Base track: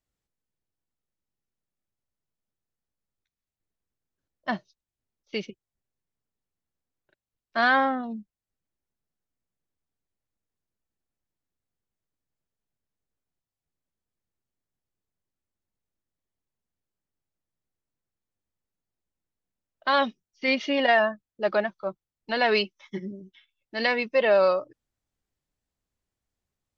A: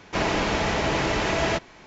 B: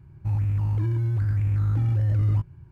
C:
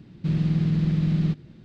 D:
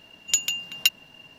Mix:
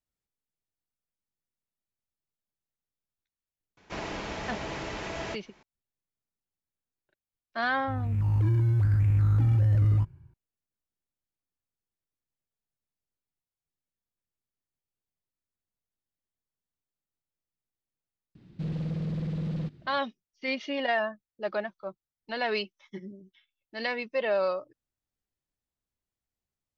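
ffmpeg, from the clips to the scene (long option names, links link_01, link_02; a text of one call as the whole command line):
ffmpeg -i bed.wav -i cue0.wav -i cue1.wav -i cue2.wav -filter_complex "[0:a]volume=-7dB[link_01];[2:a]dynaudnorm=framelen=150:gausssize=7:maxgain=14dB[link_02];[3:a]volume=21dB,asoftclip=hard,volume=-21dB[link_03];[1:a]atrim=end=1.86,asetpts=PTS-STARTPTS,volume=-12dB,afade=type=in:duration=0.004:curve=hsin,afade=type=out:start_time=1.856:duration=0.004:curve=hsin,adelay=166257S[link_04];[link_02]atrim=end=2.71,asetpts=PTS-STARTPTS,volume=-12.5dB,afade=type=in:duration=0.004:curve=hsin,afade=type=out:start_time=2.706:duration=0.004:curve=hsin,adelay=7630[link_05];[link_03]atrim=end=1.64,asetpts=PTS-STARTPTS,volume=-7.5dB,afade=type=in:duration=0.004:curve=hsin,afade=type=out:start_time=1.636:duration=0.004:curve=hsin,adelay=18350[link_06];[link_01][link_04][link_05][link_06]amix=inputs=4:normalize=0" out.wav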